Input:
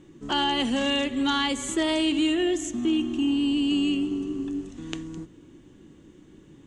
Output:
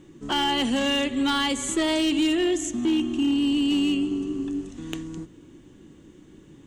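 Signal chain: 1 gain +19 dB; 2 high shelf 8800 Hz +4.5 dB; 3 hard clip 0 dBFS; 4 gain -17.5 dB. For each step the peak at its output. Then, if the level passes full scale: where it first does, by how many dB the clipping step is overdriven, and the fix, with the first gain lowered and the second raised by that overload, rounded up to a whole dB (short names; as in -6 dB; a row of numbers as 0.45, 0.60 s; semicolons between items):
+8.0, +8.5, 0.0, -17.5 dBFS; step 1, 8.5 dB; step 1 +10 dB, step 4 -8.5 dB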